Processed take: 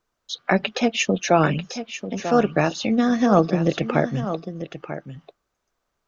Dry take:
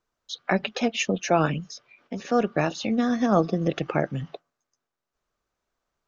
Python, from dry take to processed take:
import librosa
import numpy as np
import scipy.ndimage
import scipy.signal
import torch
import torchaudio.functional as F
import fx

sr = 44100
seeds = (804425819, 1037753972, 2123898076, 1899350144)

y = x + 10.0 ** (-11.0 / 20.0) * np.pad(x, (int(942 * sr / 1000.0), 0))[:len(x)]
y = y * librosa.db_to_amplitude(4.0)